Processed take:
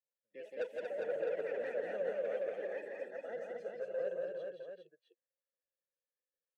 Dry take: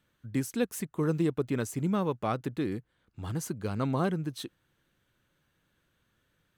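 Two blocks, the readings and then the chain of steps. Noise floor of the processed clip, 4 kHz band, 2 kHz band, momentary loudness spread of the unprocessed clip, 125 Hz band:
below −85 dBFS, below −15 dB, −4.0 dB, 9 LU, below −30 dB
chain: noise reduction from a noise print of the clip's start 21 dB
high-pass filter 200 Hz 24 dB per octave
high-shelf EQ 3,800 Hz −9.5 dB
notch filter 3,800 Hz, Q 14
comb filter 1.8 ms, depth 82%
delay with pitch and tempo change per echo 115 ms, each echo +4 semitones, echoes 3
in parallel at −9.5 dB: sample-rate reduction 7,400 Hz, jitter 0%
on the sum: formant filter e
soft clipping −28 dBFS, distortion −11 dB
multi-tap delay 44/169/233/373/405/660 ms −20/−3.5/−5/−17/−4.5/−8.5 dB
level −4.5 dB

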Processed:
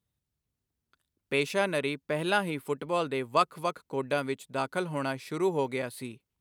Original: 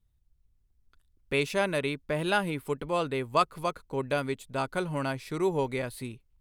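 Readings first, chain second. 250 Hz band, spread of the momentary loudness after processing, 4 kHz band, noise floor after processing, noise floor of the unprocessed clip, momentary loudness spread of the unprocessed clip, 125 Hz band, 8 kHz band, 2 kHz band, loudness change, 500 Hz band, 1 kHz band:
−0.5 dB, 7 LU, 0.0 dB, below −85 dBFS, −70 dBFS, 7 LU, −3.0 dB, 0.0 dB, 0.0 dB, 0.0 dB, 0.0 dB, 0.0 dB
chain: high-pass filter 150 Hz 12 dB per octave

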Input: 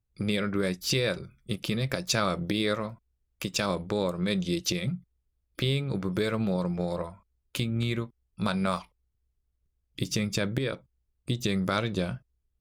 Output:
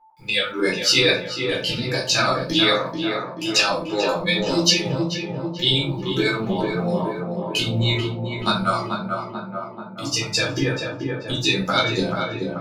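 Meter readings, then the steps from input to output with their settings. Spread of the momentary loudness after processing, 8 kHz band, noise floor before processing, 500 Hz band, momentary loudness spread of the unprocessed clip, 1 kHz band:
9 LU, +9.0 dB, −78 dBFS, +8.0 dB, 11 LU, +10.5 dB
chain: meter weighting curve D
noise gate with hold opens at −39 dBFS
noise reduction from a noise print of the clip's start 17 dB
high-shelf EQ 9,100 Hz −10.5 dB
notch filter 1,100 Hz, Q 23
in parallel at −1 dB: brickwall limiter −14.5 dBFS, peak gain reduction 8.5 dB
on the sum: pitch vibrato 0.89 Hz 5.4 cents
bit reduction 11 bits
steady tone 880 Hz −49 dBFS
shaped tremolo saw up 10 Hz, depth 70%
on a send: tape delay 436 ms, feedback 72%, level −3 dB, low-pass 1,500 Hz
on the sum: rectangular room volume 240 cubic metres, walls furnished, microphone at 4 metres
level −2 dB

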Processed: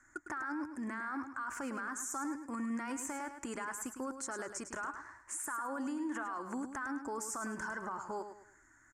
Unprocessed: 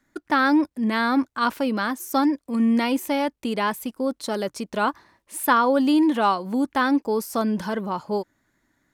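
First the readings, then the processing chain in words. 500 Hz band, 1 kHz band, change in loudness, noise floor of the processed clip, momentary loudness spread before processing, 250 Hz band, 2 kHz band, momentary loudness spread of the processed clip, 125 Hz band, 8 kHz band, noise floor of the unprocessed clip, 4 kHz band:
−19.5 dB, −17.0 dB, −17.0 dB, −65 dBFS, 9 LU, −18.5 dB, −13.5 dB, 4 LU, can't be measured, −3.0 dB, −75 dBFS, −24.5 dB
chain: drawn EQ curve 100 Hz 0 dB, 190 Hz −16 dB, 330 Hz −2 dB, 470 Hz −12 dB, 1,500 Hz +9 dB, 3,800 Hz −21 dB, 7,200 Hz +11 dB, 14,000 Hz −19 dB
brickwall limiter −27 dBFS, peak gain reduction 24 dB
downward compressor 2 to 1, threshold −44 dBFS, peak gain reduction 8 dB
repeating echo 105 ms, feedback 33%, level −9 dB
level +1.5 dB

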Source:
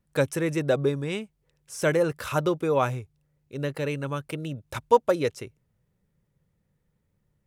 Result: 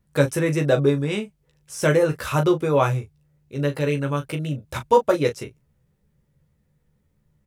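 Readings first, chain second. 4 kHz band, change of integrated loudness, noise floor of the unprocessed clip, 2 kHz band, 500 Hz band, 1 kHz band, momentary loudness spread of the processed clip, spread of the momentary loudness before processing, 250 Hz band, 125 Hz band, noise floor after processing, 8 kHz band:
+4.5 dB, +4.5 dB, −74 dBFS, +4.0 dB, +4.5 dB, +3.5 dB, 11 LU, 14 LU, +5.5 dB, +7.5 dB, −68 dBFS, +4.0 dB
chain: low-shelf EQ 140 Hz +3.5 dB
on a send: ambience of single reflections 14 ms −4 dB, 39 ms −10 dB
on the sum: level +2.5 dB

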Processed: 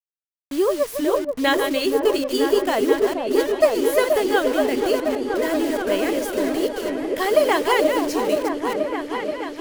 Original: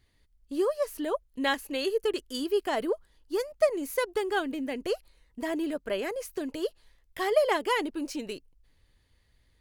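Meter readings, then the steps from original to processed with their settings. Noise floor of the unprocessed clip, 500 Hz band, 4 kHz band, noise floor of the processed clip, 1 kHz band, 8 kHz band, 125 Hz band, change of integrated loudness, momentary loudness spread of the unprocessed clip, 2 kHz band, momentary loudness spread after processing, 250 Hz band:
−68 dBFS, +10.5 dB, +8.5 dB, below −85 dBFS, +9.5 dB, +11.0 dB, can't be measured, +9.5 dB, 9 LU, +9.0 dB, 6 LU, +11.0 dB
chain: delay that plays each chunk backwards 224 ms, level −7.5 dB
bit reduction 7 bits
on a send: echo whose low-pass opens from repeat to repeat 479 ms, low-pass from 750 Hz, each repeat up 1 octave, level −3 dB
on the sum: level +7 dB

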